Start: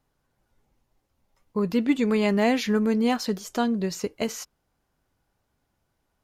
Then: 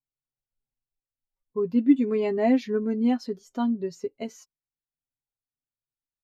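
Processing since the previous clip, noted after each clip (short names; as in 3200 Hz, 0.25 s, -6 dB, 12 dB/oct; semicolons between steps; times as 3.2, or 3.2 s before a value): comb 7.5 ms, depth 59%; spectral expander 1.5:1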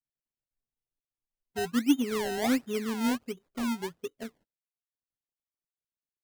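median filter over 41 samples; decimation with a swept rate 26×, swing 100% 1.4 Hz; gain -5 dB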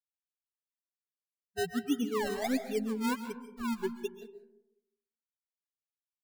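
per-bin expansion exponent 3; reverse; compressor 6:1, threshold -37 dBFS, peak gain reduction 16.5 dB; reverse; digital reverb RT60 0.85 s, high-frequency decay 0.35×, pre-delay 95 ms, DRR 9.5 dB; gain +8.5 dB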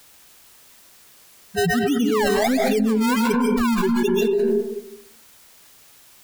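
fast leveller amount 100%; gain +6 dB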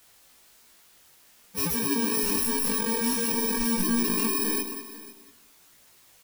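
FFT order left unsorted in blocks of 64 samples; chorus voices 2, 0.51 Hz, delay 19 ms, depth 2.4 ms; echo 0.497 s -17.5 dB; gain -3.5 dB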